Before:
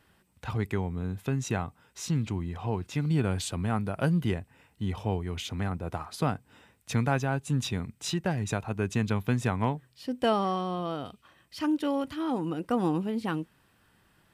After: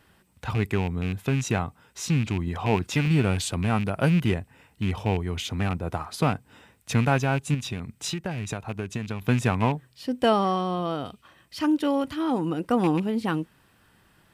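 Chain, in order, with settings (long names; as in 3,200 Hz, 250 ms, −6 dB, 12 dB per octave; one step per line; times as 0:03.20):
loose part that buzzes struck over −28 dBFS, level −29 dBFS
0:02.47–0:03.08: harmonic and percussive parts rebalanced percussive +6 dB
0:07.54–0:09.22: downward compressor, threshold −32 dBFS, peak gain reduction 10 dB
level +4.5 dB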